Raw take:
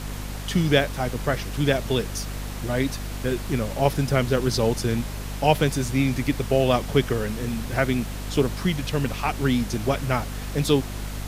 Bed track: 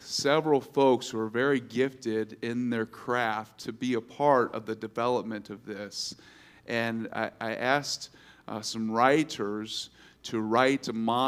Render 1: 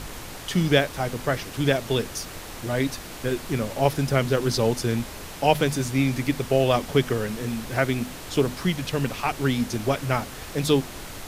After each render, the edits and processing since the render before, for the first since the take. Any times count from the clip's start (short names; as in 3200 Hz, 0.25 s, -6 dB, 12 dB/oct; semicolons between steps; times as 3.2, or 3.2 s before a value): notches 50/100/150/200/250 Hz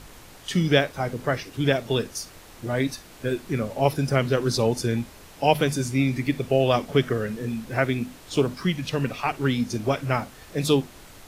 noise print and reduce 9 dB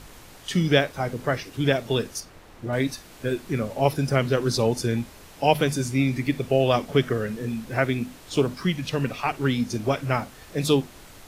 2.2–2.73 high shelf 3500 Hz -11 dB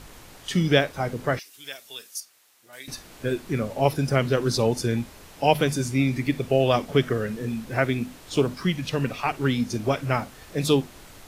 1.39–2.88 differentiator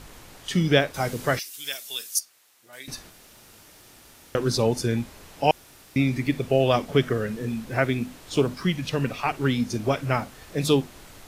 0.94–2.19 high shelf 3000 Hz +11.5 dB; 3.1–4.35 room tone; 5.51–5.96 room tone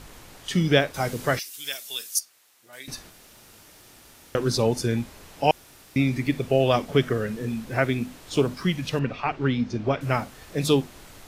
8.99–10.01 air absorption 170 m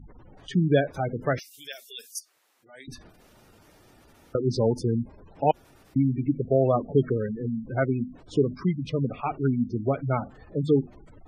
spectral gate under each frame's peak -15 dB strong; high shelf 2200 Hz -11 dB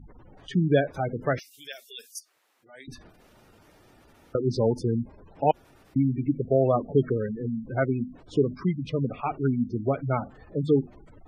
tone controls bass -1 dB, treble -4 dB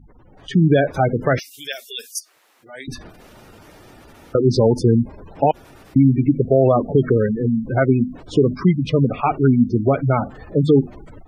limiter -16.5 dBFS, peak gain reduction 9 dB; AGC gain up to 11.5 dB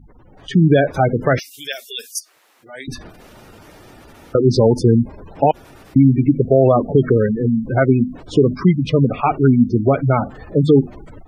gain +2 dB